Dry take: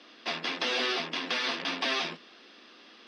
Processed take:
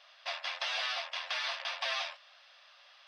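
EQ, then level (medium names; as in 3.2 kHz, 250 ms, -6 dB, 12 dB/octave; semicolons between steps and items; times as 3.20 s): brick-wall FIR high-pass 530 Hz; -4.5 dB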